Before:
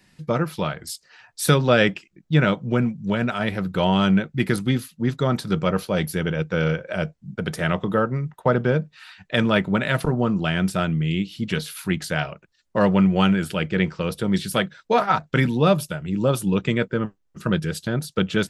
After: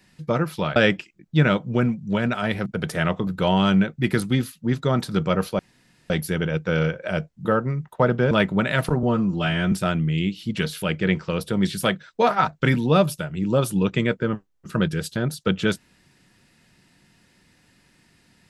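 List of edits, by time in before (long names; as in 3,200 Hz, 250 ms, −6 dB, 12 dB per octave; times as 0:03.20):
0:00.76–0:01.73: remove
0:05.95: splice in room tone 0.51 s
0:07.30–0:07.91: move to 0:03.63
0:08.77–0:09.47: remove
0:10.19–0:10.65: time-stretch 1.5×
0:11.75–0:13.53: remove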